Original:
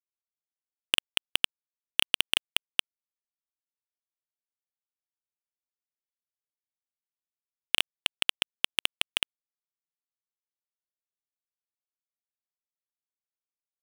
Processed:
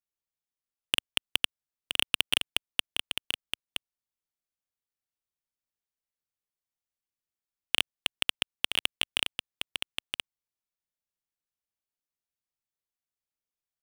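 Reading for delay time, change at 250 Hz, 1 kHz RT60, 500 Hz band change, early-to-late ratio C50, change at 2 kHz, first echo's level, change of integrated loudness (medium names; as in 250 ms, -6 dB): 970 ms, +2.0 dB, no reverb, 0.0 dB, no reverb, -0.5 dB, -6.5 dB, -2.5 dB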